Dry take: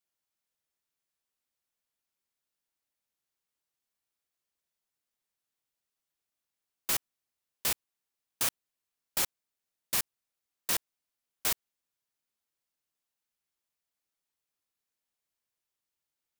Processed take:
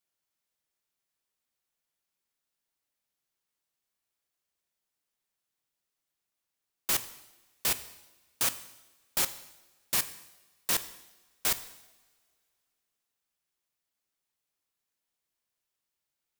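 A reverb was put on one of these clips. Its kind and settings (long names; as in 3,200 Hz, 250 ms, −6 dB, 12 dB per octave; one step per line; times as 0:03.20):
coupled-rooms reverb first 0.92 s, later 2.9 s, from −22 dB, DRR 11.5 dB
level +1.5 dB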